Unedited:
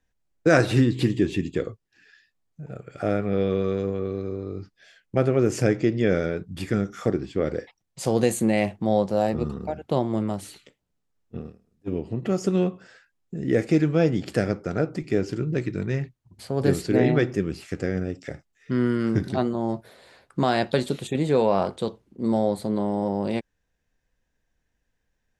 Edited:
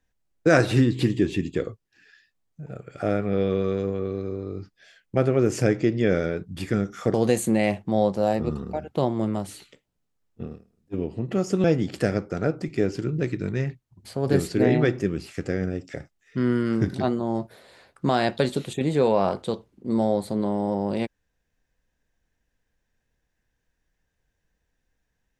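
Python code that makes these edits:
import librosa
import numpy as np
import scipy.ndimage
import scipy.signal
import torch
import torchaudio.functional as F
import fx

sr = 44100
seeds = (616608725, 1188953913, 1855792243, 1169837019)

y = fx.edit(x, sr, fx.cut(start_s=7.14, length_s=0.94),
    fx.cut(start_s=12.58, length_s=1.4), tone=tone)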